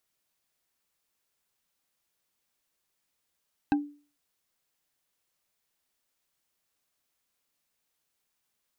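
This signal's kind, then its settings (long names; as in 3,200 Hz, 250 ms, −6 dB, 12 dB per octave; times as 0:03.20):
struck wood bar, lowest mode 291 Hz, decay 0.39 s, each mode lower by 5 dB, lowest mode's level −18.5 dB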